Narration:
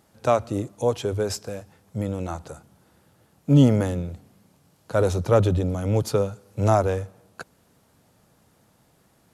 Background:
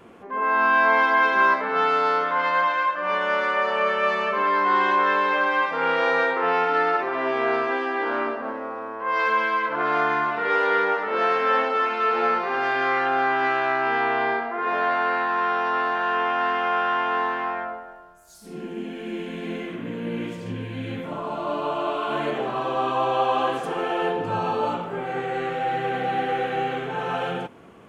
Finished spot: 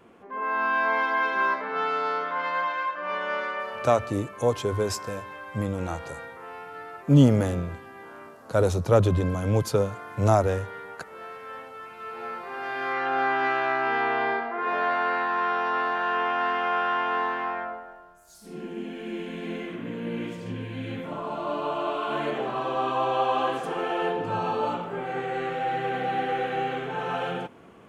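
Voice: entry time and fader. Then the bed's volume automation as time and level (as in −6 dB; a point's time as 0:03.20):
3.60 s, −1.0 dB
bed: 0:03.39 −6 dB
0:04.22 −19 dB
0:11.82 −19 dB
0:13.22 −2.5 dB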